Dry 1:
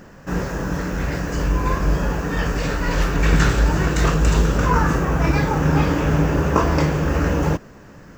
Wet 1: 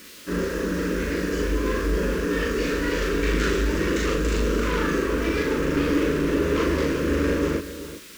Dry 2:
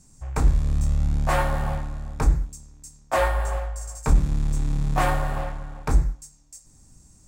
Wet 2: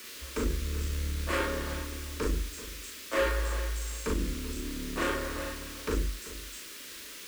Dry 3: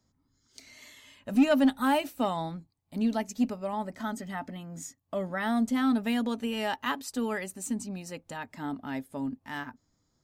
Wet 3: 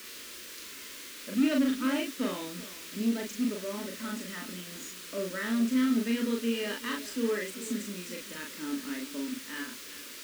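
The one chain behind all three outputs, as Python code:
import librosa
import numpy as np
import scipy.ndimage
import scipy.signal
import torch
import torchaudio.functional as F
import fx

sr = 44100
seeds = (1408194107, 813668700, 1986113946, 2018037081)

p1 = fx.leveller(x, sr, passes=2)
p2 = fx.dynamic_eq(p1, sr, hz=440.0, q=1.7, threshold_db=-30.0, ratio=4.0, max_db=5)
p3 = p2 + fx.echo_single(p2, sr, ms=383, db=-15.5, dry=0)
p4 = fx.dmg_noise_colour(p3, sr, seeds[0], colour='white', level_db=-33.0)
p5 = fx.highpass(p4, sr, hz=120.0, slope=6)
p6 = np.clip(p5, -10.0 ** (-11.0 / 20.0), 10.0 ** (-11.0 / 20.0))
p7 = fx.high_shelf(p6, sr, hz=6400.0, db=-11.0)
p8 = fx.fixed_phaser(p7, sr, hz=320.0, stages=4)
p9 = fx.doubler(p8, sr, ms=39.0, db=-2.0)
y = F.gain(torch.from_numpy(p9), -7.0).numpy()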